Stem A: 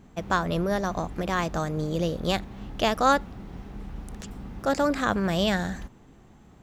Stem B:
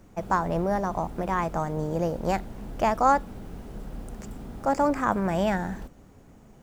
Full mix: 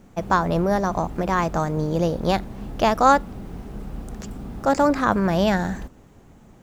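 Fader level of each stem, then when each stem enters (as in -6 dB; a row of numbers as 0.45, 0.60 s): -1.5, +0.5 dB; 0.00, 0.00 s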